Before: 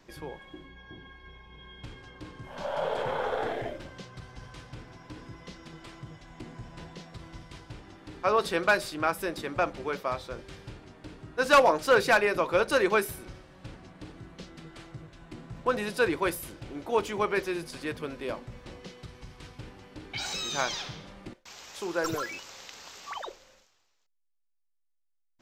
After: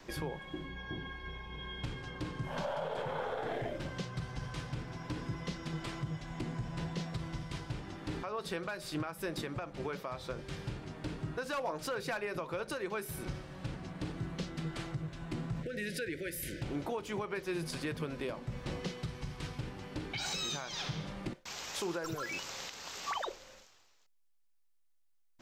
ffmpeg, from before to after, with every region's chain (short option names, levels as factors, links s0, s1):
-filter_complex "[0:a]asettb=1/sr,asplit=3[s0][s1][s2];[s0]atrim=end=15.634[s3];[s1]atrim=start=15.63:end=16.62,asetpts=PTS-STARTPTS,afade=t=in:d=0.004:c=qsin,afade=t=out:st=0.986:d=0.004:c=qsin,equalizer=f=1900:t=o:w=0.65:g=7,acompressor=threshold=0.00891:ratio=4:attack=3.2:release=140:knee=1:detection=peak,asuperstop=centerf=960:order=8:qfactor=1[s4];[s2]atrim=start=16.616[s5];[s3][s4]acrossfade=d=0.004:c1=hsin:c2=qsin[s6];[s6][s5]acrossfade=d=0.004:c1=qsin:c2=hsin,adynamicequalizer=threshold=0.00178:dfrequency=150:dqfactor=2.4:tfrequency=150:tqfactor=2.4:attack=5:release=100:ratio=0.375:range=4:mode=boostabove:tftype=bell,acompressor=threshold=0.0251:ratio=6,alimiter=level_in=2.82:limit=0.0631:level=0:latency=1:release=474,volume=0.355,volume=1.88"